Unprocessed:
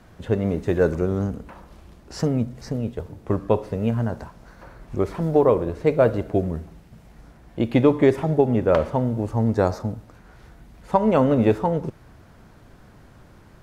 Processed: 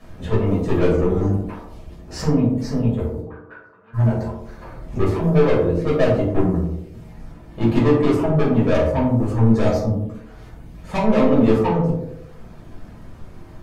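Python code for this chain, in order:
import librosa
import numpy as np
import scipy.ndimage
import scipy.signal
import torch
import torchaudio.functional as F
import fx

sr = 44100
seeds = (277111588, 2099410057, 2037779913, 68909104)

p1 = fx.dereverb_blind(x, sr, rt60_s=0.81)
p2 = 10.0 ** (-21.5 / 20.0) * np.tanh(p1 / 10.0 ** (-21.5 / 20.0))
p3 = fx.auto_wah(p2, sr, base_hz=650.0, top_hz=1500.0, q=11.0, full_db=-26.0, direction='up', at=(3.2, 3.93), fade=0.02)
p4 = p3 + fx.echo_banded(p3, sr, ms=90, feedback_pct=58, hz=410.0, wet_db=-4.5, dry=0)
p5 = fx.room_shoebox(p4, sr, seeds[0], volume_m3=350.0, walls='furnished', distance_m=6.0)
y = p5 * librosa.db_to_amplitude(-3.0)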